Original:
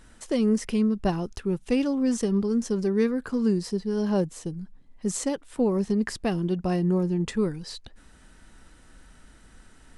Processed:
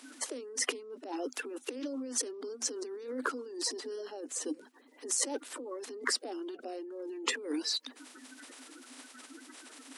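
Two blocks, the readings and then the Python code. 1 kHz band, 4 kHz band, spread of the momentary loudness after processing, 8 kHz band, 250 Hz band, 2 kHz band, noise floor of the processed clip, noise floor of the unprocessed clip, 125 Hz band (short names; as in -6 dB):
-6.5 dB, +3.5 dB, 17 LU, +4.0 dB, -17.0 dB, 0.0 dB, -58 dBFS, -54 dBFS, under -40 dB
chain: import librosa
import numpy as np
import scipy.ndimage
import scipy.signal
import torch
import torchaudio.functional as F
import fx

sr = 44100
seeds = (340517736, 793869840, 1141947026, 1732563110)

y = fx.spec_quant(x, sr, step_db=30)
y = fx.over_compress(y, sr, threshold_db=-35.0, ratio=-1.0)
y = scipy.signal.sosfilt(scipy.signal.cheby1(8, 1.0, 250.0, 'highpass', fs=sr, output='sos'), y)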